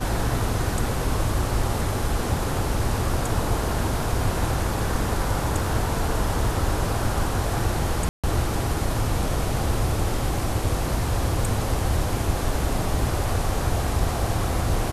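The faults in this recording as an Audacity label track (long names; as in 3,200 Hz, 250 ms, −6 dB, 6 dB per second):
8.090000	8.240000	drop-out 146 ms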